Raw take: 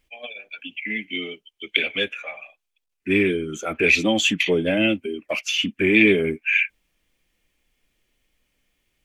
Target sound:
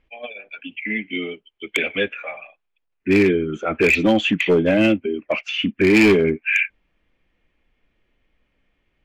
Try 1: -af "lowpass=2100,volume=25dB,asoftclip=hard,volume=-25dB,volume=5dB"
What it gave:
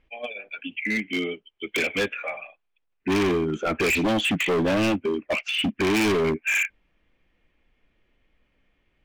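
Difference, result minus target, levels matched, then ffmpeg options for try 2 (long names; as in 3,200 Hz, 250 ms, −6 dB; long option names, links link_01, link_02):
gain into a clipping stage and back: distortion +12 dB
-af "lowpass=2100,volume=14.5dB,asoftclip=hard,volume=-14.5dB,volume=5dB"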